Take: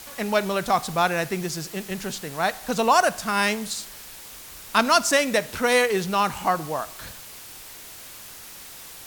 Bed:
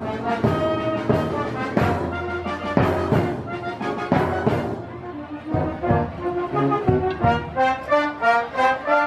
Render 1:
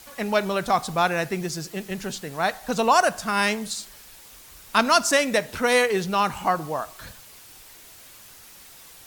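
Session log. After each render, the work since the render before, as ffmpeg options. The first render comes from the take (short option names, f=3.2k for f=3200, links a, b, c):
-af "afftdn=nr=6:nf=-42"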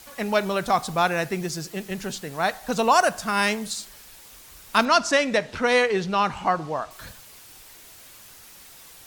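-filter_complex "[0:a]asettb=1/sr,asplit=3[a][b][c];[a]atrim=end=4.854[d];[b]atrim=start=4.85:end=6.91,asetpts=PTS-STARTPTS,afade=t=in:d=0.004:c=qsin,afade=t=out:st=2.056:d=0.004:c=qsin,lowpass=5.5k[e];[c]atrim=start=6.906[f];[d][e]acrossfade=d=0.004:c1=hsin:c2=qsin[g];[g][f]acrossfade=d=0.004:c1=qsin:c2=hsin"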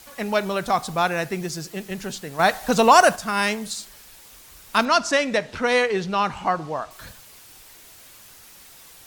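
-filter_complex "[0:a]asettb=1/sr,asplit=3[a][b][c];[a]atrim=end=2.394[d];[b]atrim=start=2.39:end=3.16,asetpts=PTS-STARTPTS,afade=t=in:d=0.004:c=qsin,afade=t=out:st=0.766:d=0.004:c=qsin,acontrast=49[e];[c]atrim=start=3.156[f];[d][e]acrossfade=d=0.004:c1=hsin:c2=qsin[g];[g][f]acrossfade=d=0.004:c1=qsin:c2=hsin"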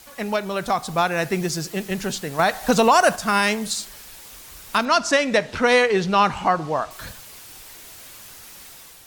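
-af "alimiter=limit=-12dB:level=0:latency=1:release=291,dynaudnorm=f=620:g=3:m=5dB"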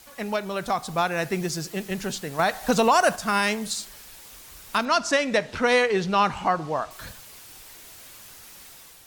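-af "volume=-3.5dB"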